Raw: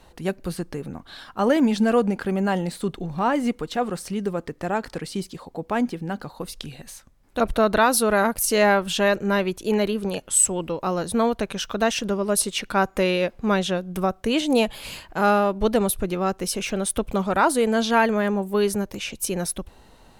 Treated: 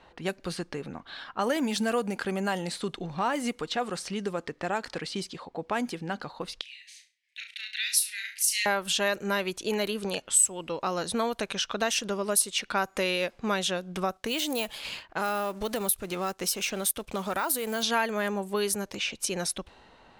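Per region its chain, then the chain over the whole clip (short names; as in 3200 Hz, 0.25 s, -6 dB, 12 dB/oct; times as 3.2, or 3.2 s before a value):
6.61–8.66 steep high-pass 1900 Hz 72 dB/oct + flutter echo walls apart 5.9 m, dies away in 0.32 s
14.17–17.83 G.711 law mismatch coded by A + compressor 3:1, threshold -22 dBFS + careless resampling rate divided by 2×, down none, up zero stuff
whole clip: low-pass opened by the level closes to 2300 Hz, open at -17.5 dBFS; tilt +2.5 dB/oct; compressor 2:1, threshold -28 dBFS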